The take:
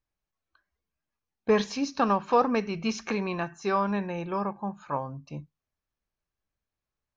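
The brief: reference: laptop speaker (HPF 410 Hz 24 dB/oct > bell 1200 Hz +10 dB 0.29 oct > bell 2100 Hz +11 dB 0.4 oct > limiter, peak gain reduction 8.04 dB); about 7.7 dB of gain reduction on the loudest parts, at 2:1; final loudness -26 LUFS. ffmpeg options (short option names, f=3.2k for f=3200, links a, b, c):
-af "acompressor=threshold=-31dB:ratio=2,highpass=f=410:w=0.5412,highpass=f=410:w=1.3066,equalizer=f=1.2k:t=o:w=0.29:g=10,equalizer=f=2.1k:t=o:w=0.4:g=11,volume=7.5dB,alimiter=limit=-14dB:level=0:latency=1"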